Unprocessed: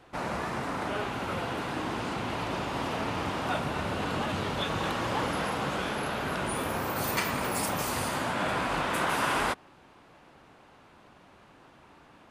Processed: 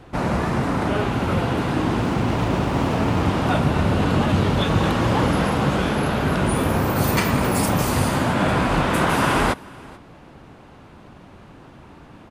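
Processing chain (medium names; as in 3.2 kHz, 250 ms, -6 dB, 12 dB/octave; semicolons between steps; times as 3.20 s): bass shelf 340 Hz +12 dB; on a send: delay 435 ms -23.5 dB; 2.00–3.23 s: on the sum: sliding maximum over 5 samples; trim +6 dB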